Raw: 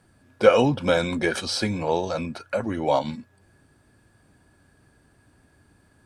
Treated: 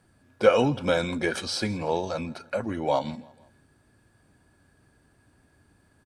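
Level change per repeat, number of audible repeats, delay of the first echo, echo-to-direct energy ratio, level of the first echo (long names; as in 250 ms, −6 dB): −6.5 dB, 2, 163 ms, −22.0 dB, −23.0 dB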